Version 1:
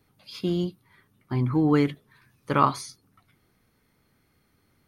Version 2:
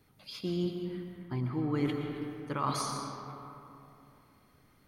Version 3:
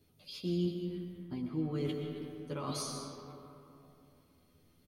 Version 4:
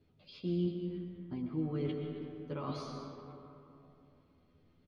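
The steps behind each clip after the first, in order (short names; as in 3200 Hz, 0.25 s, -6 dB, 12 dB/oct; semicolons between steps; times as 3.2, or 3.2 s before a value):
reverse; compressor 6:1, threshold -30 dBFS, peak gain reduction 15 dB; reverse; reverb RT60 3.0 s, pre-delay 80 ms, DRR 2.5 dB
band shelf 1300 Hz -9 dB; doubler 12 ms -2 dB; gain -4 dB
air absorption 250 m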